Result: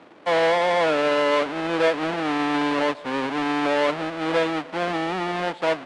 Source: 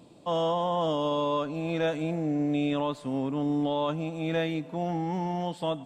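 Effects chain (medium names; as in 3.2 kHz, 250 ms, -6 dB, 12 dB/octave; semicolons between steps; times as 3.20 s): square wave that keeps the level; three-band isolator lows -19 dB, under 310 Hz, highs -16 dB, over 3.8 kHz; trim +5 dB; Nellymoser 44 kbps 22.05 kHz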